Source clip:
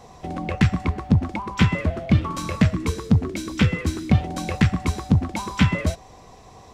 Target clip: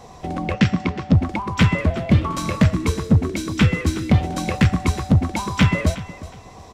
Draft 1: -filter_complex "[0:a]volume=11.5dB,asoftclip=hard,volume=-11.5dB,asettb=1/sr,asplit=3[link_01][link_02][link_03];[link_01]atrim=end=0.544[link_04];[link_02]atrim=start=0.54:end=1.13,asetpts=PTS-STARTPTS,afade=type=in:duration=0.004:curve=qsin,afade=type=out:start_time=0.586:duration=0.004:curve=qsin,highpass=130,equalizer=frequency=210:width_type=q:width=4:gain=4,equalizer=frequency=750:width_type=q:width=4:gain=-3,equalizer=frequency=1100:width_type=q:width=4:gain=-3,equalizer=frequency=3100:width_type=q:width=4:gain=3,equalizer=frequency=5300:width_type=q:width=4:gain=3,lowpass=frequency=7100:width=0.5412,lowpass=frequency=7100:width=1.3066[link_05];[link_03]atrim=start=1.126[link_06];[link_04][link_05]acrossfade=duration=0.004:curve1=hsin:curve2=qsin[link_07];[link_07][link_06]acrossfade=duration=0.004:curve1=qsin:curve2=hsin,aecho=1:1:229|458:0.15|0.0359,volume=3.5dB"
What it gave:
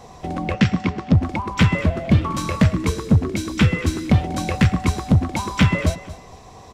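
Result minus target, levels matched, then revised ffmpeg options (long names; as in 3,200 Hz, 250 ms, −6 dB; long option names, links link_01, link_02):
echo 136 ms early
-filter_complex "[0:a]volume=11.5dB,asoftclip=hard,volume=-11.5dB,asettb=1/sr,asplit=3[link_01][link_02][link_03];[link_01]atrim=end=0.544[link_04];[link_02]atrim=start=0.54:end=1.13,asetpts=PTS-STARTPTS,afade=type=in:duration=0.004:curve=qsin,afade=type=out:start_time=0.586:duration=0.004:curve=qsin,highpass=130,equalizer=frequency=210:width_type=q:width=4:gain=4,equalizer=frequency=750:width_type=q:width=4:gain=-3,equalizer=frequency=1100:width_type=q:width=4:gain=-3,equalizer=frequency=3100:width_type=q:width=4:gain=3,equalizer=frequency=5300:width_type=q:width=4:gain=3,lowpass=frequency=7100:width=0.5412,lowpass=frequency=7100:width=1.3066[link_05];[link_03]atrim=start=1.126[link_06];[link_04][link_05]acrossfade=duration=0.004:curve1=hsin:curve2=qsin[link_07];[link_07][link_06]acrossfade=duration=0.004:curve1=qsin:curve2=hsin,aecho=1:1:365|730:0.15|0.0359,volume=3.5dB"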